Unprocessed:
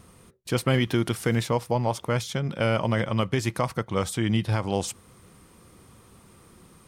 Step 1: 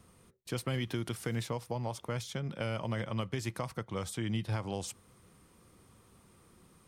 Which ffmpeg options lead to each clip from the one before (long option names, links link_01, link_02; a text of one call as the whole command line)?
ffmpeg -i in.wav -filter_complex "[0:a]acrossover=split=130|3000[link_01][link_02][link_03];[link_02]acompressor=threshold=-24dB:ratio=6[link_04];[link_01][link_04][link_03]amix=inputs=3:normalize=0,volume=-8.5dB" out.wav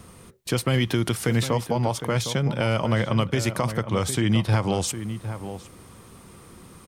ffmpeg -i in.wav -filter_complex "[0:a]asplit=2[link_01][link_02];[link_02]alimiter=level_in=4dB:limit=-24dB:level=0:latency=1:release=161,volume=-4dB,volume=2dB[link_03];[link_01][link_03]amix=inputs=2:normalize=0,asplit=2[link_04][link_05];[link_05]adelay=758,volume=-10dB,highshelf=frequency=4000:gain=-17.1[link_06];[link_04][link_06]amix=inputs=2:normalize=0,volume=7dB" out.wav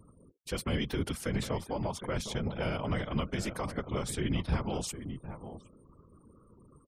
ffmpeg -i in.wav -af "afftfilt=real='re*gte(hypot(re,im),0.00794)':imag='im*gte(hypot(re,im),0.00794)':win_size=1024:overlap=0.75,afftfilt=real='hypot(re,im)*cos(2*PI*random(0))':imag='hypot(re,im)*sin(2*PI*random(1))':win_size=512:overlap=0.75,volume=-4dB" out.wav